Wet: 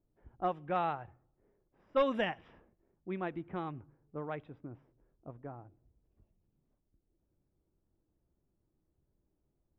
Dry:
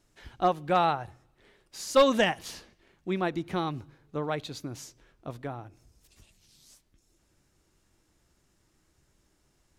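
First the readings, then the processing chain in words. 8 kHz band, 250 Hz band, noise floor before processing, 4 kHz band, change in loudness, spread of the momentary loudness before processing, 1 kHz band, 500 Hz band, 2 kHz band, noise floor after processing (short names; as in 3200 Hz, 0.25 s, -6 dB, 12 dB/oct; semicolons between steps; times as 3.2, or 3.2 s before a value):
under -30 dB, -8.5 dB, -70 dBFS, -14.0 dB, -8.0 dB, 21 LU, -8.5 dB, -8.5 dB, -9.0 dB, -81 dBFS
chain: low-pass opened by the level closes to 590 Hz, open at -20 dBFS; polynomial smoothing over 25 samples; gain -8.5 dB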